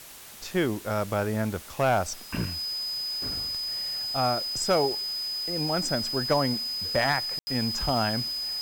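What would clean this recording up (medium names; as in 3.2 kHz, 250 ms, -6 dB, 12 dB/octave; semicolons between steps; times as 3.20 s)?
clip repair -15.5 dBFS; band-stop 5 kHz, Q 30; room tone fill 7.39–7.47 s; noise reduction 30 dB, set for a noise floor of -42 dBFS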